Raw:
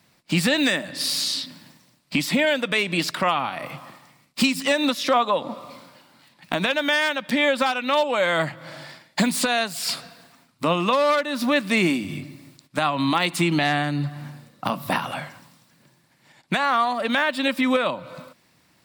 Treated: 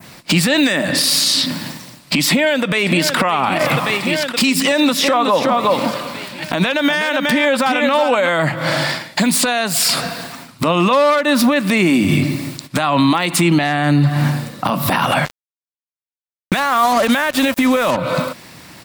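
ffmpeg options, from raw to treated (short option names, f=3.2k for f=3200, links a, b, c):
-filter_complex "[0:a]asplit=2[a][b];[b]afade=t=in:st=2.29:d=0.01,afade=t=out:st=3.18:d=0.01,aecho=0:1:570|1140|1710|2280|2850|3420|3990:0.188365|0.122437|0.0795842|0.0517297|0.0336243|0.0218558|0.0142063[c];[a][c]amix=inputs=2:normalize=0,asettb=1/sr,asplit=3[d][e][f];[d]atrim=end=4.494[g];[e]atrim=start=4.49:end=8.29,asetpts=PTS-STARTPTS,afade=t=in:d=0.004:c=qsin,afade=t=out:st=3.796:d=0.004:c=qsin,aecho=1:1:368:0.355,atrim=end_sample=167580[h];[f]atrim=start=8.286[i];[g][h]acrossfade=d=0.004:c1=hsin:c2=qsin[j];[j][i]acrossfade=d=0.004:c1=qsin:c2=hsin,asettb=1/sr,asplit=3[k][l][m];[k]atrim=end=15.254[n];[l]atrim=start=15.25:end=17.97,asetpts=PTS-STARTPTS,afade=t=in:d=0.004:c=qsin,afade=t=out:st=2.716:d=0.004:c=qsin,acrusher=bits=4:mix=0:aa=0.5[o];[m]atrim=start=17.966[p];[n][o]acrossfade=d=0.004:c1=hsin:c2=qsin[q];[q][p]acrossfade=d=0.004:c1=qsin:c2=hsin,adynamicequalizer=threshold=0.0112:dfrequency=4100:dqfactor=0.94:tfrequency=4100:tqfactor=0.94:attack=5:release=100:ratio=0.375:range=2:mode=cutabove:tftype=bell,acompressor=threshold=-30dB:ratio=4,alimiter=level_in=26.5dB:limit=-1dB:release=50:level=0:latency=1,volume=-5dB"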